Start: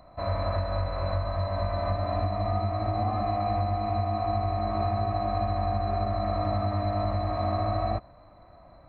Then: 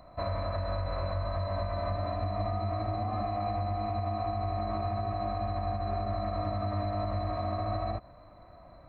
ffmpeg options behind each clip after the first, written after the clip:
-af "alimiter=limit=-23.5dB:level=0:latency=1:release=111,bandreject=f=820:w=14"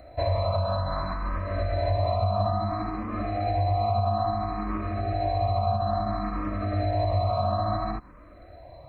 -filter_complex "[0:a]asplit=2[a][b];[b]afreqshift=0.59[c];[a][c]amix=inputs=2:normalize=1,volume=8.5dB"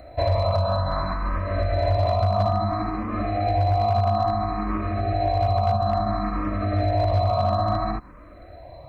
-af "volume=18dB,asoftclip=hard,volume=-18dB,volume=4dB"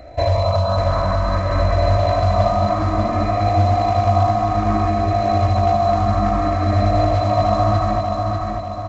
-filter_complex "[0:a]asplit=2[a][b];[b]acrusher=bits=4:mode=log:mix=0:aa=0.000001,volume=-4dB[c];[a][c]amix=inputs=2:normalize=0,aecho=1:1:593|1186|1779|2372|2965|3558:0.631|0.309|0.151|0.0742|0.0364|0.0178,aresample=16000,aresample=44100"

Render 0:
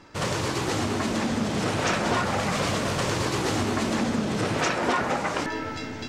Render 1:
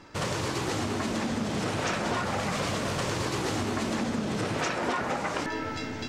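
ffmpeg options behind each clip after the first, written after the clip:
-af "acompressor=threshold=-29dB:ratio=2"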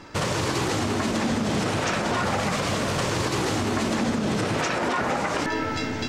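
-af "alimiter=limit=-22dB:level=0:latency=1:release=67,volume=6.5dB"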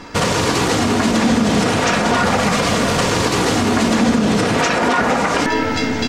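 -af "aecho=1:1:4.2:0.34,volume=8.5dB"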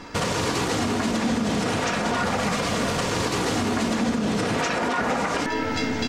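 -af "alimiter=limit=-10dB:level=0:latency=1:release=491,volume=-4.5dB"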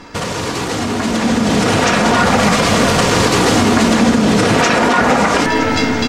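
-af "aecho=1:1:966:0.224,dynaudnorm=f=200:g=13:m=8.5dB,volume=4dB" -ar 48000 -c:a libmp3lame -b:a 128k

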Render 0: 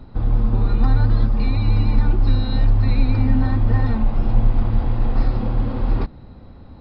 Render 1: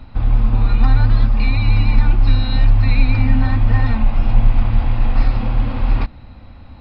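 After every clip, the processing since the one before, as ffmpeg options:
-af "equalizer=f=160:t=o:w=0.67:g=-7,equalizer=f=400:t=o:w=0.67:g=-11,equalizer=f=2.5k:t=o:w=0.67:g=8,volume=4dB"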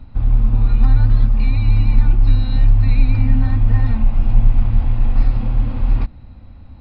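-af "lowshelf=f=360:g=9,volume=-8.5dB"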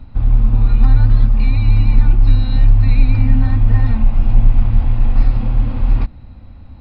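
-af "asoftclip=type=hard:threshold=-3dB,volume=2dB"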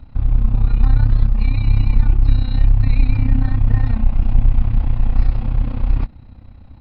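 -af "tremolo=f=31:d=0.71"

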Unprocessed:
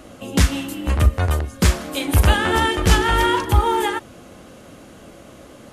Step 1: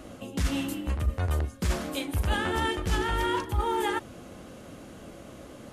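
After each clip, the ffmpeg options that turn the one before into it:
-af "lowshelf=f=480:g=3,areverse,acompressor=threshold=-20dB:ratio=5,areverse,volume=-4.5dB"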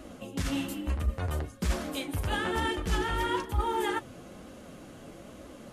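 -af "flanger=delay=2.9:depth=5.1:regen=-44:speed=1.1:shape=triangular,volume=2dB"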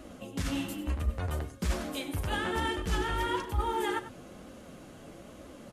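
-af "aecho=1:1:97:0.211,volume=-1.5dB"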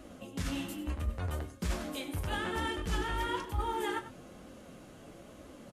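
-filter_complex "[0:a]asplit=2[a][b];[b]adelay=23,volume=-12dB[c];[a][c]amix=inputs=2:normalize=0,volume=-3dB"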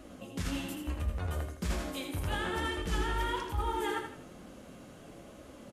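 -af "aecho=1:1:81|162|243|324:0.447|0.156|0.0547|0.0192"

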